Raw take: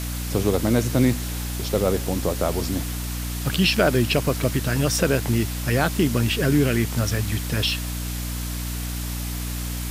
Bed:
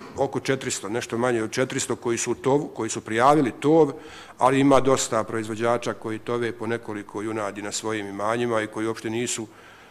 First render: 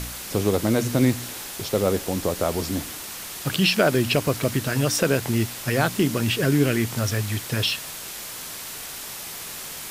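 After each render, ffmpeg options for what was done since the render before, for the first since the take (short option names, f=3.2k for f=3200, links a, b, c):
-af "bandreject=f=60:t=h:w=4,bandreject=f=120:t=h:w=4,bandreject=f=180:t=h:w=4,bandreject=f=240:t=h:w=4,bandreject=f=300:t=h:w=4"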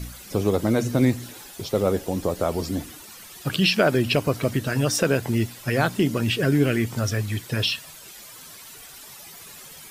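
-af "afftdn=nr=12:nf=-36"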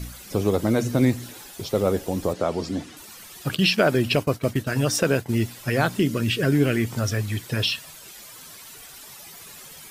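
-filter_complex "[0:a]asettb=1/sr,asplit=3[a][b][c];[a]atrim=end=2.334[d];[b]atrim=start=2.33:end=2.97,asetpts=PTS-STARTPTS,afade=t=in:d=0.004:c=qsin,afade=t=out:st=0.636:d=0.004:c=qsin,highpass=110,lowpass=6.5k[e];[c]atrim=start=2.966[f];[d][e]acrossfade=d=0.004:c1=hsin:c2=qsin[g];[g][f]acrossfade=d=0.004:c1=qsin:c2=hsin,asettb=1/sr,asplit=3[h][i][j];[h]atrim=end=3.554[k];[i]atrim=start=3.55:end=5.39,asetpts=PTS-STARTPTS,afade=t=in:d=0.004:c=qsin,afade=t=out:st=1.836:d=0.004:c=qsin,agate=range=-33dB:threshold=-26dB:ratio=3:release=100:detection=peak[l];[j]atrim=start=5.386[m];[k][l]acrossfade=d=0.004:c1=hsin:c2=qsin[n];[n][m]acrossfade=d=0.004:c1=qsin:c2=hsin,asettb=1/sr,asplit=3[o][p][q];[o]atrim=end=5.994[r];[p]atrim=start=5.99:end=6.43,asetpts=PTS-STARTPTS,afade=t=in:d=0.004:c=qsin,afade=t=out:st=0.436:d=0.004:c=qsin,equalizer=f=810:t=o:w=0.42:g=-12[s];[q]atrim=start=6.426[t];[r][s]acrossfade=d=0.004:c1=hsin:c2=qsin[u];[u][t]acrossfade=d=0.004:c1=qsin:c2=hsin"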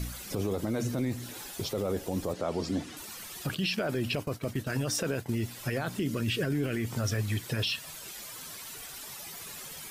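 -af "acompressor=threshold=-32dB:ratio=1.5,alimiter=limit=-21.5dB:level=0:latency=1:release=17"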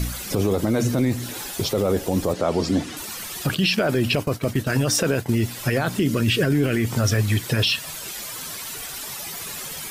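-af "volume=10dB"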